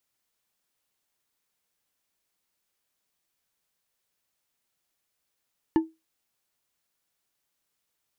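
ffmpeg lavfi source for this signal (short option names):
-f lavfi -i "aevalsrc='0.2*pow(10,-3*t/0.22)*sin(2*PI*322*t)+0.0631*pow(10,-3*t/0.108)*sin(2*PI*887.8*t)+0.02*pow(10,-3*t/0.068)*sin(2*PI*1740.1*t)+0.00631*pow(10,-3*t/0.048)*sin(2*PI*2876.4*t)+0.002*pow(10,-3*t/0.036)*sin(2*PI*4295.5*t)':d=0.89:s=44100"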